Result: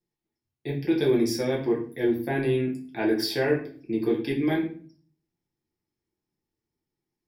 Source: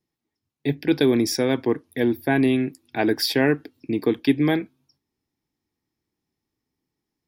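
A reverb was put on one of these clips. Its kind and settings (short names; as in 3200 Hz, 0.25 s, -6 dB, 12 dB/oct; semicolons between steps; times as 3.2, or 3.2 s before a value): shoebox room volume 38 m³, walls mixed, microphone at 0.79 m; gain -10 dB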